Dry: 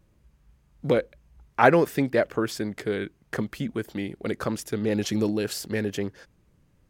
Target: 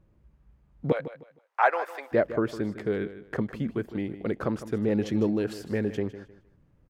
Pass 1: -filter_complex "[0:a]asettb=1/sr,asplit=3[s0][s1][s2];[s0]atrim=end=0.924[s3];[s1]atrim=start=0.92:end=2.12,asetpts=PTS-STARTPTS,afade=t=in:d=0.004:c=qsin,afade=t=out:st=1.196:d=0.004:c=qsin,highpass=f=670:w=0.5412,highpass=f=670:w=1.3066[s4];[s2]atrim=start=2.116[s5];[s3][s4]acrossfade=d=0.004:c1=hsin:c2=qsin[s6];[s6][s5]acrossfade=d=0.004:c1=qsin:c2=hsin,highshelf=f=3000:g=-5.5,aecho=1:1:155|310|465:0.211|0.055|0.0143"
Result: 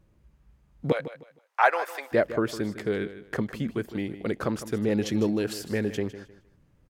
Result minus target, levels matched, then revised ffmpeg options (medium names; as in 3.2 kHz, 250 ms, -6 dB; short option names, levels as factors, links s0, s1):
8 kHz band +9.0 dB
-filter_complex "[0:a]asettb=1/sr,asplit=3[s0][s1][s2];[s0]atrim=end=0.924[s3];[s1]atrim=start=0.92:end=2.12,asetpts=PTS-STARTPTS,afade=t=in:d=0.004:c=qsin,afade=t=out:st=1.196:d=0.004:c=qsin,highpass=f=670:w=0.5412,highpass=f=670:w=1.3066[s4];[s2]atrim=start=2.116[s5];[s3][s4]acrossfade=d=0.004:c1=hsin:c2=qsin[s6];[s6][s5]acrossfade=d=0.004:c1=qsin:c2=hsin,highshelf=f=3000:g=-17,aecho=1:1:155|310|465:0.211|0.055|0.0143"